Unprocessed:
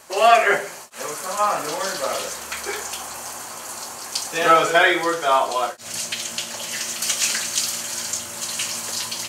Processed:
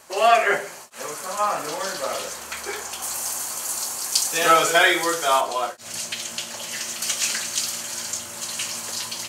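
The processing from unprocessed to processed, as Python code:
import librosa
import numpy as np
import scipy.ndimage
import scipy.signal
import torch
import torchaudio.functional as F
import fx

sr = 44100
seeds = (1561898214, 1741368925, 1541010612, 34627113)

y = fx.high_shelf(x, sr, hz=4200.0, db=12.0, at=(3.02, 5.41))
y = y * librosa.db_to_amplitude(-2.5)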